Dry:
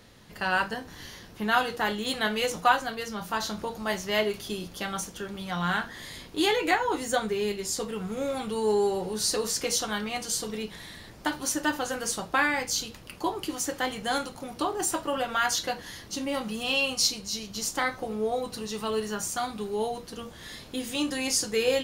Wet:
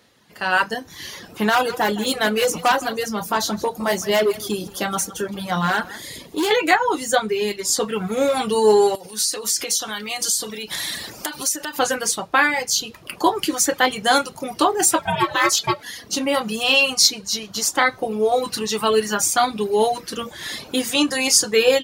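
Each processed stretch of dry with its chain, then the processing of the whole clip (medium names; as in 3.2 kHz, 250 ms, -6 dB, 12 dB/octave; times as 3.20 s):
1.49–6.51 s: peaking EQ 2.5 kHz -7 dB 2.6 oct + overload inside the chain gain 26.5 dB + delay 163 ms -10.5 dB
8.95–11.79 s: compression 8:1, threshold -39 dBFS + treble shelf 3.1 kHz +11 dB
14.99–15.83 s: comb 4.1 ms, depth 72% + ring modulator 380 Hz
whole clip: reverb removal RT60 0.81 s; high-pass 250 Hz 6 dB/octave; level rider gain up to 15 dB; trim -1 dB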